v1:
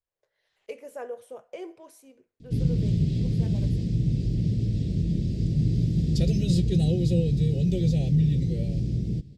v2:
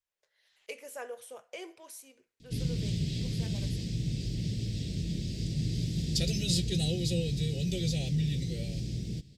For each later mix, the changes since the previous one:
master: add tilt shelf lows -8.5 dB, about 1200 Hz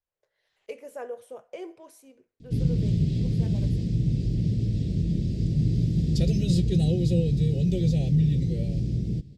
master: add tilt shelf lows +8.5 dB, about 1200 Hz

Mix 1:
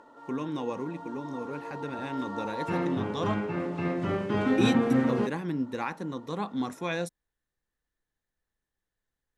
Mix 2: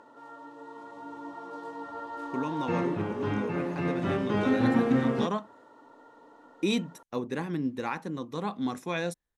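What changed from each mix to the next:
speech: entry +2.05 s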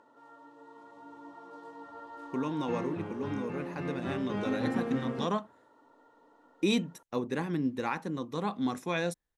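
background -7.5 dB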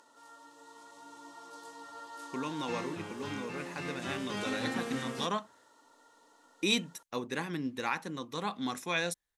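background: add tone controls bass 0 dB, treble +15 dB; master: add tilt shelf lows -6 dB, about 1100 Hz

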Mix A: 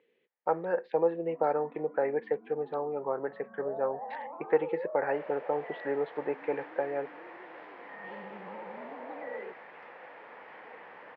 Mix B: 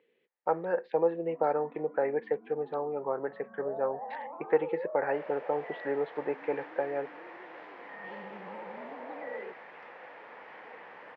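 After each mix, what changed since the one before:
second sound: remove air absorption 81 m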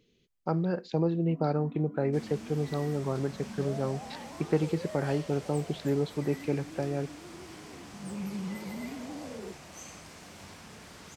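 second sound: entry -3.00 s; master: remove speaker cabinet 480–2500 Hz, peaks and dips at 500 Hz +9 dB, 870 Hz +8 dB, 1800 Hz +8 dB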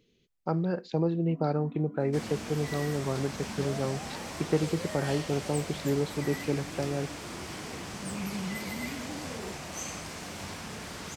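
second sound +8.5 dB

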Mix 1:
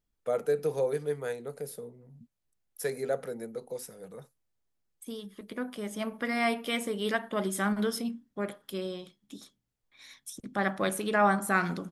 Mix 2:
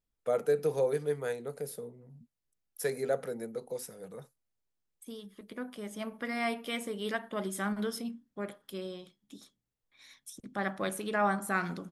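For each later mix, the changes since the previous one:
second voice -4.5 dB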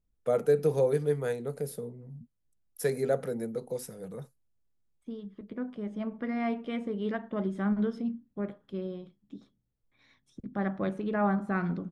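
second voice: add tape spacing loss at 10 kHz 30 dB; master: add low shelf 310 Hz +10.5 dB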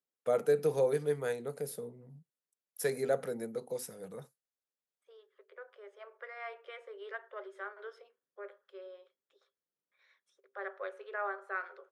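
second voice: add rippled Chebyshev high-pass 380 Hz, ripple 9 dB; master: add low shelf 310 Hz -10.5 dB

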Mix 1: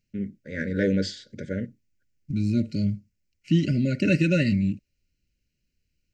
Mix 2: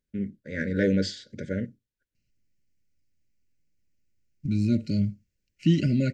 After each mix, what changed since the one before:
second voice: entry +2.15 s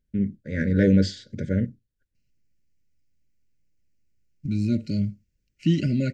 first voice: add low shelf 210 Hz +12 dB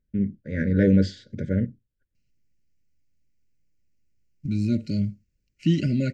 first voice: add high shelf 3700 Hz -9 dB

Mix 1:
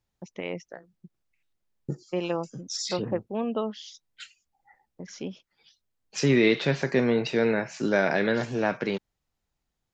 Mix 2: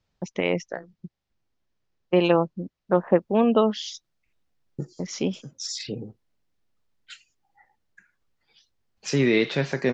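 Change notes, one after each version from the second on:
first voice +9.5 dB; second voice: entry +2.90 s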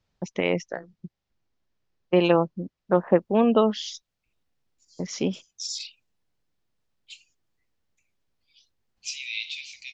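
second voice: add steep high-pass 2300 Hz 96 dB/oct

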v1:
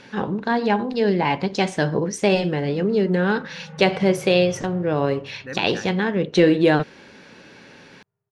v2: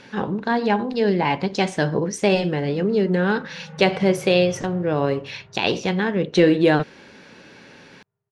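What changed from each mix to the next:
second voice: muted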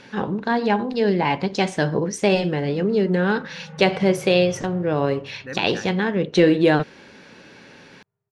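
second voice: unmuted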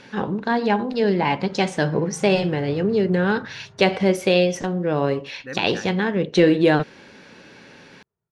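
background: entry -1.75 s

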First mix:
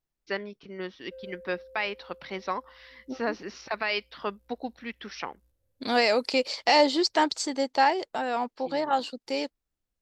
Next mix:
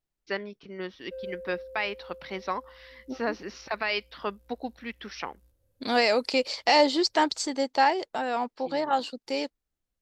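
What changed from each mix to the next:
background +6.0 dB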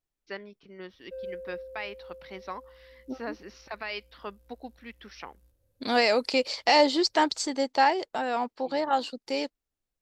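first voice -7.0 dB

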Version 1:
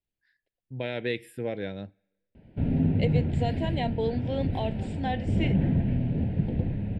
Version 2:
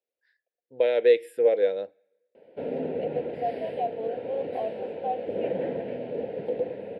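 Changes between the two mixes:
second voice: add vowel filter a; master: add resonant high-pass 490 Hz, resonance Q 6

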